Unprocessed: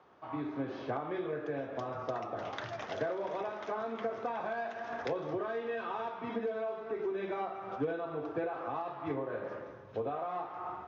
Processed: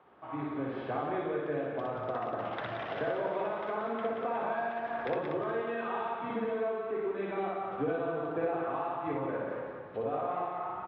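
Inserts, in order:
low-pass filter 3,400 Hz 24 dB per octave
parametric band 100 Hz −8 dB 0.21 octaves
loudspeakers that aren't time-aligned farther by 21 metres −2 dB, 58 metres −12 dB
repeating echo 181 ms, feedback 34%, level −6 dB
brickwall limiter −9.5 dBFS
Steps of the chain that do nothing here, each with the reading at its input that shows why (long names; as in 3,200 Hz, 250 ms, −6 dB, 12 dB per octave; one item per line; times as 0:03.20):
brickwall limiter −9.5 dBFS: peak of its input −20.0 dBFS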